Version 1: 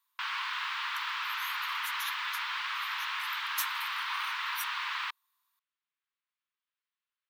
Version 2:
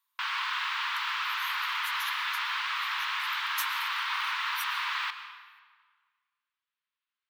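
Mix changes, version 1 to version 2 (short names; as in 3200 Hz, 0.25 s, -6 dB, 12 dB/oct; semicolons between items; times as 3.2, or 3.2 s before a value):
speech -4.0 dB; reverb: on, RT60 1.6 s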